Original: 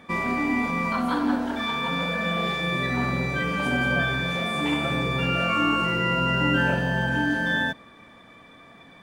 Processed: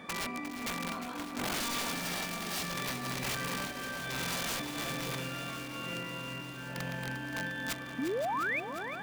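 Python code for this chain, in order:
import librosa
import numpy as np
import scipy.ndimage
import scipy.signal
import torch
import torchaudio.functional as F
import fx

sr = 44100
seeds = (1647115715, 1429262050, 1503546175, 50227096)

y = fx.rattle_buzz(x, sr, strikes_db=-29.0, level_db=-26.0)
y = scipy.signal.sosfilt(scipy.signal.butter(2, 110.0, 'highpass', fs=sr, output='sos'), y)
y = fx.over_compress(y, sr, threshold_db=-30.0, ratio=-0.5)
y = (np.mod(10.0 ** (23.5 / 20.0) * y + 1.0, 2.0) - 1.0) / 10.0 ** (23.5 / 20.0)
y = fx.notch_comb(y, sr, f0_hz=500.0, at=(1.93, 2.7))
y = fx.spec_paint(y, sr, seeds[0], shape='rise', start_s=7.98, length_s=0.62, low_hz=240.0, high_hz=2600.0, level_db=-27.0)
y = y + 10.0 ** (-12.0 / 20.0) * np.pad(y, (int(524 * sr / 1000.0), 0))[:len(y)]
y = fx.echo_crushed(y, sr, ms=353, feedback_pct=80, bits=10, wet_db=-10.5)
y = y * 10.0 ** (-5.5 / 20.0)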